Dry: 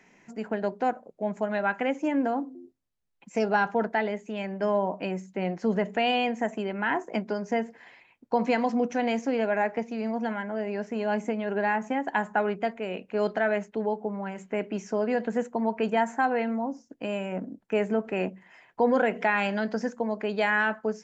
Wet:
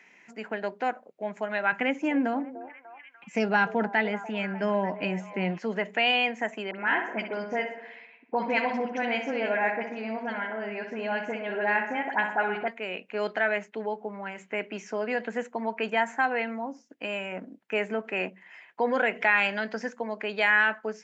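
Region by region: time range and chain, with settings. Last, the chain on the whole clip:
1.72–5.59 tone controls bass +14 dB, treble 0 dB + delay with a stepping band-pass 0.296 s, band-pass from 600 Hz, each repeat 0.7 oct, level -11 dB
6.71–12.68 air absorption 94 m + dispersion highs, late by 54 ms, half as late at 1700 Hz + darkening echo 63 ms, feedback 63%, low-pass 2600 Hz, level -6.5 dB
whole clip: Bessel high-pass 240 Hz; bell 2300 Hz +10 dB 1.6 oct; gain -3.5 dB

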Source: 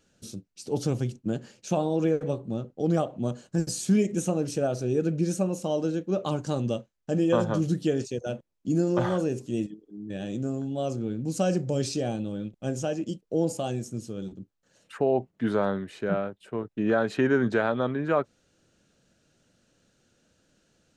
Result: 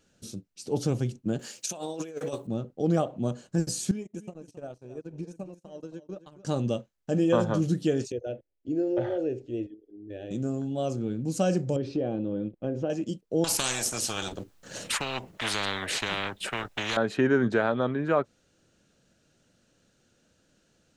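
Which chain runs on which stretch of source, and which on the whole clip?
1.39–2.47 RIAA curve recording + negative-ratio compressor -33 dBFS, ratio -0.5
3.91–6.45 compressor 12:1, threshold -28 dBFS + gate -32 dBFS, range -36 dB + echo 0.269 s -14.5 dB
8.12–10.31 LPF 2200 Hz + fixed phaser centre 450 Hz, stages 4
11.76–12.9 compressor 3:1, threshold -29 dBFS + air absorption 340 m + small resonant body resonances 330/490 Hz, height 8 dB, ringing for 25 ms
13.44–16.97 transient shaper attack +1 dB, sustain -4 dB + spectral compressor 10:1
whole clip: dry

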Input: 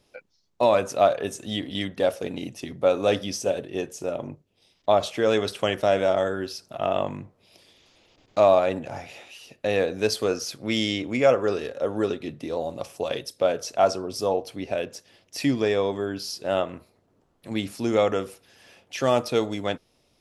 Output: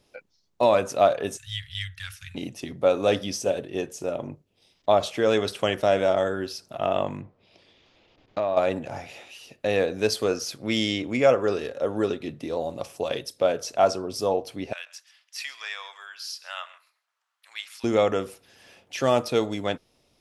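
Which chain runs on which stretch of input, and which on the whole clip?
1.37–2.35 elliptic band-stop 100–1600 Hz, stop band 50 dB + low shelf 150 Hz +6 dB
7.21–8.57 LPF 3800 Hz + compressor 5:1, threshold -22 dBFS
14.73–17.84 HPF 1200 Hz 24 dB/oct + high shelf 6600 Hz -5 dB + echo 0.133 s -18.5 dB
whole clip: dry

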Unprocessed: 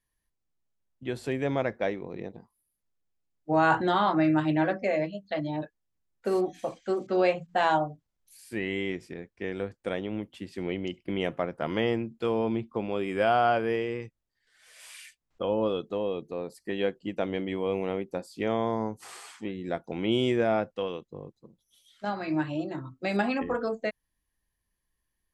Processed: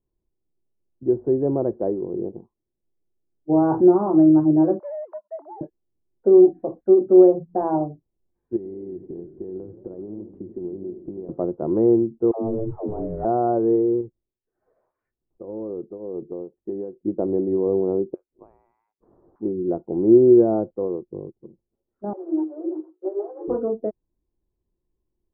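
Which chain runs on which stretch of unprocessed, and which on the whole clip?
4.79–5.61 sine-wave speech + sample leveller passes 2 + HPF 810 Hz 24 dB/oct
8.56–11.29 compressor 16:1, threshold -42 dBFS + low shelf 440 Hz +5.5 dB + warbling echo 82 ms, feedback 68%, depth 216 cents, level -12 dB
12.31–13.25 switching spikes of -21.5 dBFS + ring modulator 220 Hz + dispersion lows, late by 0.137 s, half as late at 360 Hz
14.01–17.05 tremolo triangle 1.9 Hz, depth 85% + compressor 12:1, threshold -33 dBFS
18.14–19.36 differentiator + inverted band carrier 3000 Hz
22.13–23.48 median filter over 41 samples + Chebyshev high-pass 310 Hz, order 10 + ensemble effect
whole clip: Bessel low-pass 580 Hz, order 6; bell 360 Hz +13 dB 0.43 oct; gain +4.5 dB

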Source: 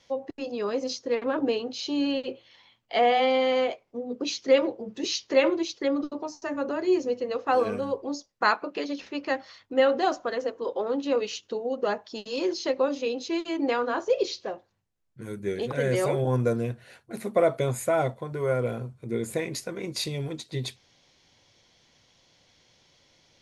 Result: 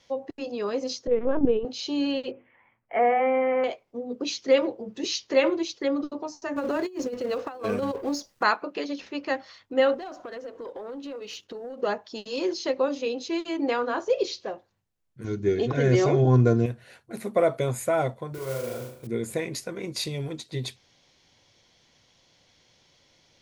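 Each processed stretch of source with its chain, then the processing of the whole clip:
1.07–1.65 LPC vocoder at 8 kHz pitch kept + tilt shelf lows +7.5 dB, about 780 Hz
2.31–3.64 steep low-pass 2300 Hz 48 dB/oct + notches 50/100/150/200/250/300/350/400/450 Hz
6.56–8.43 G.711 law mismatch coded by mu + negative-ratio compressor -28 dBFS, ratio -0.5
9.94–11.82 high shelf 5300 Hz -7.5 dB + compressor 8:1, threshold -37 dBFS + sample leveller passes 1
15.24–16.66 bell 140 Hz +10 dB 2.3 oct + comb 2.8 ms, depth 54% + careless resampling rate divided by 3×, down none, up filtered
18.34–19.07 compressor 2.5:1, threshold -35 dBFS + flutter echo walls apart 6.4 m, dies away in 0.68 s + modulation noise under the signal 13 dB
whole clip: dry

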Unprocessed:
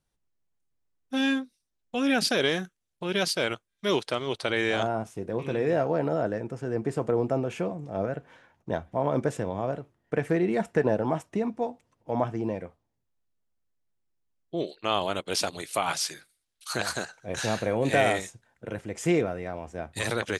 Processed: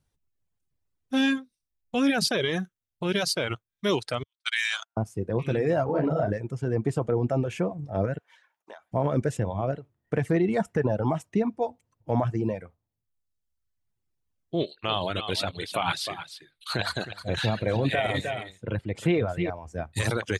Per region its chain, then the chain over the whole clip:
4.23–4.97 HPF 1200 Hz 24 dB/oct + gate -33 dBFS, range -47 dB + high shelf 2300 Hz +11.5 dB
5.84–6.33 LPF 3000 Hz 6 dB/oct + doubler 39 ms -3.5 dB
8.18–8.92 HPF 930 Hz + compressor 12:1, threshold -41 dBFS
14.57–19.5 resonant high shelf 4700 Hz -7 dB, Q 3 + echo 0.309 s -9.5 dB
whole clip: bell 98 Hz +9.5 dB 1.5 oct; limiter -15 dBFS; reverb removal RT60 1.1 s; gain +2 dB

